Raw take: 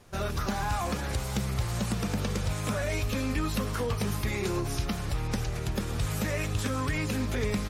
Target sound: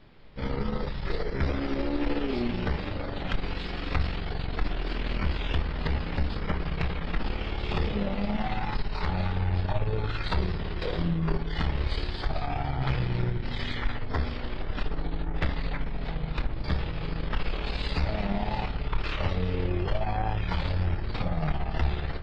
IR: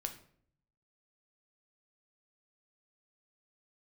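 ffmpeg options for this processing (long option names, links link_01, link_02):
-filter_complex "[0:a]bandreject=frequency=139.7:width_type=h:width=4,bandreject=frequency=279.4:width_type=h:width=4,bandreject=frequency=419.1:width_type=h:width=4,bandreject=frequency=558.8:width_type=h:width=4,asetrate=15259,aresample=44100,aeval=exprs='(tanh(12.6*val(0)+0.65)-tanh(0.65))/12.6':channel_layout=same,asplit=2[link_01][link_02];[1:a]atrim=start_sample=2205[link_03];[link_02][link_03]afir=irnorm=-1:irlink=0,volume=0.5dB[link_04];[link_01][link_04]amix=inputs=2:normalize=0"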